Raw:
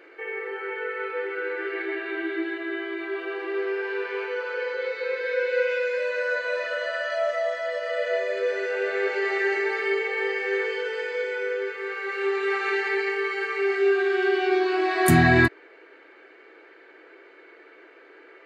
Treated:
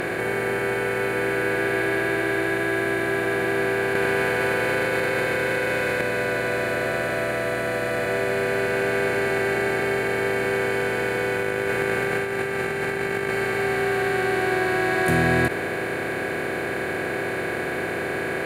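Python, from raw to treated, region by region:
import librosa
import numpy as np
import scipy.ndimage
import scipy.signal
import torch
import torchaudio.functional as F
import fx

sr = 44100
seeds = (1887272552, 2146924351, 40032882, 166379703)

y = fx.chain(x, sr, fx.highpass(hz=530.0, slope=6),
    fx.echo_single(ms=100, db=-5.0),
    fx.env_flatten(amount_pct=100), at=(3.95, 6.01))
y = fx.chain(y, sr, fx.notch(hz=4500.0, q=7.1),
    fx.over_compress(threshold_db=-32.0, ratio=-0.5), at=(11.36, 13.3))
y = fx.bin_compress(y, sr, power=0.2)
y = fx.high_shelf(y, sr, hz=5300.0, db=-6.0)
y = y * 10.0 ** (-7.0 / 20.0)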